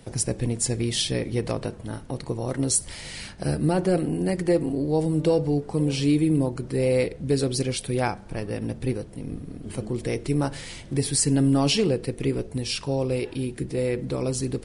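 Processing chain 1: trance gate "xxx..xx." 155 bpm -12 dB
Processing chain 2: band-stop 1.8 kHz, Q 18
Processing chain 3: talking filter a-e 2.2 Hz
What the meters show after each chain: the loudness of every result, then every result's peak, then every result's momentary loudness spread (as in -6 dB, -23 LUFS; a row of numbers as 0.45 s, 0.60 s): -27.5 LUFS, -25.5 LUFS, -38.0 LUFS; -11.5 dBFS, -10.0 dBFS, -19.0 dBFS; 14 LU, 12 LU, 14 LU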